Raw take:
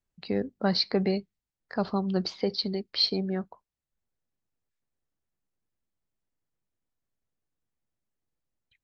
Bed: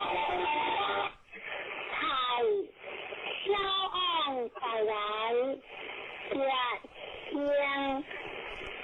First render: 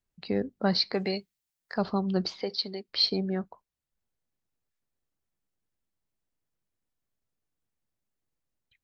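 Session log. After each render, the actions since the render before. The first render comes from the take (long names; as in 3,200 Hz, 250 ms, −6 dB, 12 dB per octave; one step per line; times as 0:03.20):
0:00.93–0:01.78: spectral tilt +2.5 dB per octave
0:02.42–0:02.88: high-pass filter 560 Hz 6 dB per octave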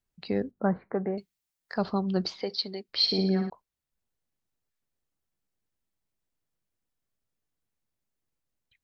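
0:00.51–0:01.18: Butterworth low-pass 1,600 Hz
0:03.02–0:03.50: flutter between parallel walls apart 9.9 metres, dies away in 0.68 s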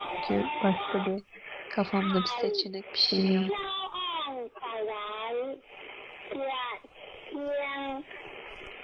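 mix in bed −3 dB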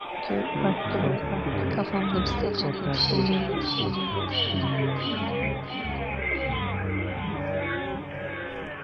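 delay with pitch and tempo change per echo 127 ms, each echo −6 semitones, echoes 3
repeating echo 674 ms, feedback 46%, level −7.5 dB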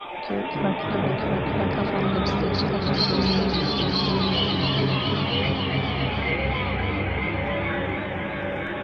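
single-tap delay 953 ms −3.5 dB
feedback echo with a swinging delay time 277 ms, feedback 64%, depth 101 cents, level −5.5 dB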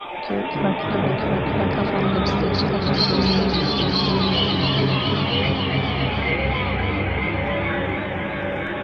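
level +3 dB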